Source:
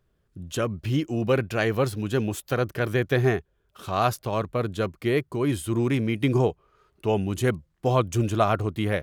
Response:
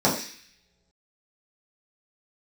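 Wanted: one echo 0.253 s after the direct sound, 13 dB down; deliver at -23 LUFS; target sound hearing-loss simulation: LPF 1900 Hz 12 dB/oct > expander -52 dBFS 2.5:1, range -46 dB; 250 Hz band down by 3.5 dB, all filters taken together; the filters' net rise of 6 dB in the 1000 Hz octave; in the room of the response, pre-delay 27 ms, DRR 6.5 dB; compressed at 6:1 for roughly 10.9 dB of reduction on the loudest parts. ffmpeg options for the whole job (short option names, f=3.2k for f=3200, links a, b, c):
-filter_complex "[0:a]equalizer=f=250:t=o:g=-5.5,equalizer=f=1k:t=o:g=9,acompressor=threshold=-24dB:ratio=6,aecho=1:1:253:0.224,asplit=2[a][b];[1:a]atrim=start_sample=2205,adelay=27[c];[b][c]afir=irnorm=-1:irlink=0,volume=-23.5dB[d];[a][d]amix=inputs=2:normalize=0,lowpass=1.9k,agate=range=-46dB:threshold=-52dB:ratio=2.5,volume=5.5dB"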